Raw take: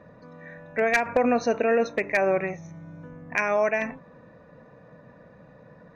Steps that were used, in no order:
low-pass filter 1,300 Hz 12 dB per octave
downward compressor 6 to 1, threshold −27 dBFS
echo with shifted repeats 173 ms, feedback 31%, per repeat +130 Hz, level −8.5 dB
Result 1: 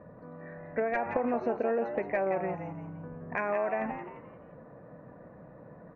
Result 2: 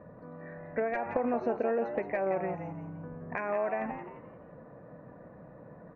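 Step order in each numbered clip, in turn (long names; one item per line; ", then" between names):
low-pass filter, then downward compressor, then echo with shifted repeats
downward compressor, then echo with shifted repeats, then low-pass filter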